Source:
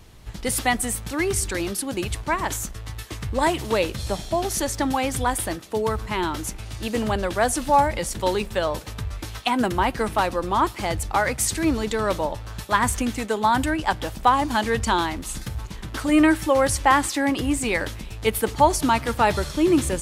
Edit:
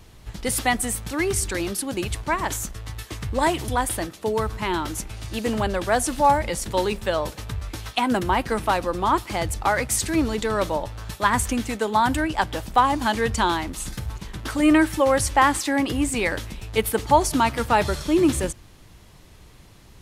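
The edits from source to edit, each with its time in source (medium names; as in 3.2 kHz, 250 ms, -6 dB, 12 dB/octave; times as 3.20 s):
3.68–5.17 s: delete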